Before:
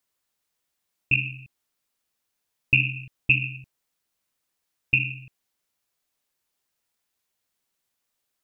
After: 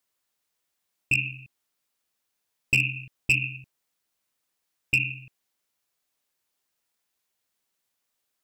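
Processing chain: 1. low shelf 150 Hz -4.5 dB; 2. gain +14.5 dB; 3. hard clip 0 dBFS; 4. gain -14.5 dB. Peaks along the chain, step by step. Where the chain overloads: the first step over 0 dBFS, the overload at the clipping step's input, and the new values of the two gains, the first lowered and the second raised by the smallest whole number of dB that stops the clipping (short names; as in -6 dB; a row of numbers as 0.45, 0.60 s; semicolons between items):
-6.0, +8.5, 0.0, -14.5 dBFS; step 2, 8.5 dB; step 2 +5.5 dB, step 4 -5.5 dB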